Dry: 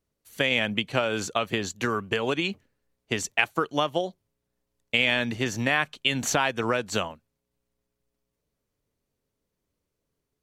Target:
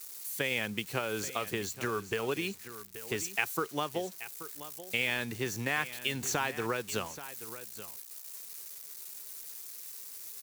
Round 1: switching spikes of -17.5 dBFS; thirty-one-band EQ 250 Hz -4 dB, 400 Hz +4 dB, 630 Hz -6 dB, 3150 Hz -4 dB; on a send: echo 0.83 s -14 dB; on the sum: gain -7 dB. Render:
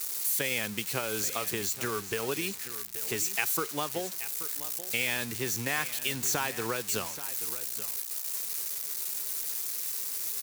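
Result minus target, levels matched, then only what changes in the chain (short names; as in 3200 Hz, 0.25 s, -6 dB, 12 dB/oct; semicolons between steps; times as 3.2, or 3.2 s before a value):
switching spikes: distortion +11 dB
change: switching spikes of -28.5 dBFS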